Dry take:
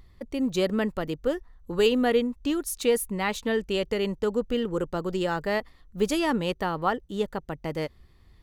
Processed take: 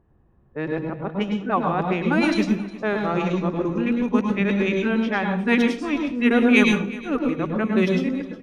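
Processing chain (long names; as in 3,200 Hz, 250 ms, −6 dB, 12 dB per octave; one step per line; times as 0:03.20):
played backwards from end to start
parametric band 8,800 Hz −7.5 dB 2.1 octaves
low-pass that shuts in the quiet parts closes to 880 Hz, open at −21 dBFS
formants moved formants −3 semitones
repeating echo 361 ms, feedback 47%, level −19 dB
convolution reverb RT60 0.45 s, pre-delay 100 ms, DRR 4 dB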